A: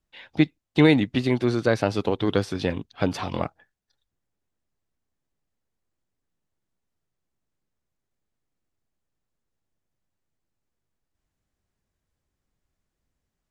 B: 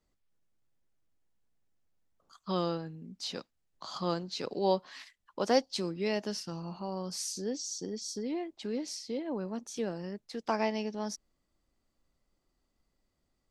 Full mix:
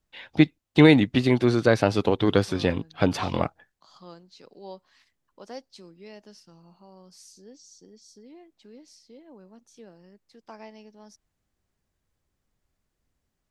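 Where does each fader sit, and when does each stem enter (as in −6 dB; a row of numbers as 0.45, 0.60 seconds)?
+2.0, −13.5 decibels; 0.00, 0.00 seconds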